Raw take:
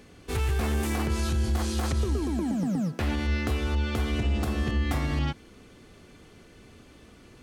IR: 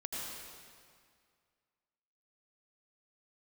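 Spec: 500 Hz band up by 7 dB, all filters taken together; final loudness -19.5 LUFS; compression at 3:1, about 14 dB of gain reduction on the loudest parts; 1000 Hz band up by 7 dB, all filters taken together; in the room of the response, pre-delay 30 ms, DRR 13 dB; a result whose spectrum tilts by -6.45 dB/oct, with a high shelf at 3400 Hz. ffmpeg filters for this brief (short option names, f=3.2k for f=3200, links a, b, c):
-filter_complex "[0:a]equalizer=f=500:t=o:g=8,equalizer=f=1k:t=o:g=7,highshelf=f=3.4k:g=-6.5,acompressor=threshold=-41dB:ratio=3,asplit=2[a][b];[1:a]atrim=start_sample=2205,adelay=30[c];[b][c]afir=irnorm=-1:irlink=0,volume=-14.5dB[d];[a][d]amix=inputs=2:normalize=0,volume=21dB"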